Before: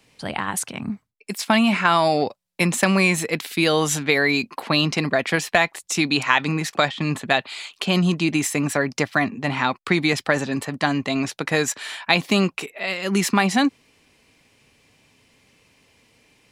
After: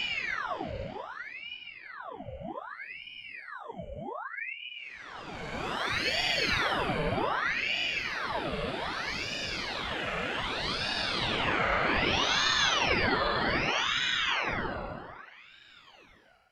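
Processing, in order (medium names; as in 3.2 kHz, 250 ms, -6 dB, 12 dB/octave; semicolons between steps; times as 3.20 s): vibrato 0.34 Hz 17 cents; Paulstretch 32×, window 0.05 s, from 9.26 s; ring modulator with a swept carrier 1.5 kHz, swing 80%, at 0.64 Hz; trim -5 dB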